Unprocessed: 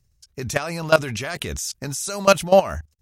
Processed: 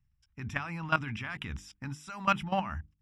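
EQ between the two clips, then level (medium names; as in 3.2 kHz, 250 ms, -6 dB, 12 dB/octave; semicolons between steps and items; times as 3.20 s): Savitzky-Golay filter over 25 samples; high-order bell 500 Hz -15.5 dB 1.1 oct; hum notches 50/100/150/200/250/300/350/400/450 Hz; -7.0 dB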